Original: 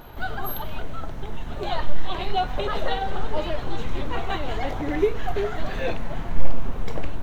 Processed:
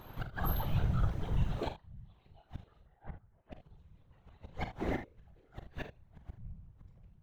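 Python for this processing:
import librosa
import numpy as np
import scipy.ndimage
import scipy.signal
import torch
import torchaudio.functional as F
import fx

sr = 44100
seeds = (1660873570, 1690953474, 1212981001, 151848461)

y = fx.gate_flip(x, sr, shuts_db=-16.0, range_db=-34)
y = fx.ladder_lowpass(y, sr, hz=2300.0, resonance_pct=35, at=(2.81, 3.51), fade=0.02)
y = fx.room_early_taps(y, sr, ms=(42, 55, 77), db=(-10.0, -14.5, -13.5))
y = fx.whisperise(y, sr, seeds[0])
y = y * 10.0 ** (-8.0 / 20.0)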